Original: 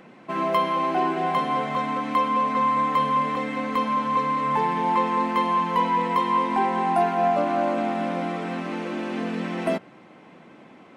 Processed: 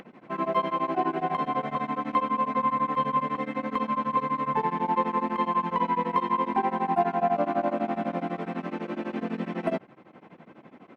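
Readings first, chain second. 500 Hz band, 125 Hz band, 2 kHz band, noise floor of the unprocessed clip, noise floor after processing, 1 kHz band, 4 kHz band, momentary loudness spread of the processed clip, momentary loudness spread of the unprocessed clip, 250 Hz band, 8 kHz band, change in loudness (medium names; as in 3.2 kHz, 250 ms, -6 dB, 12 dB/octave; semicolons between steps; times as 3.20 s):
-3.5 dB, -3.0 dB, -6.0 dB, -49 dBFS, -53 dBFS, -4.0 dB, -9.0 dB, 7 LU, 7 LU, -3.0 dB, no reading, -4.0 dB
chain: low-pass 1.9 kHz 6 dB/octave; upward compressor, threshold -42 dBFS; tremolo of two beating tones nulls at 12 Hz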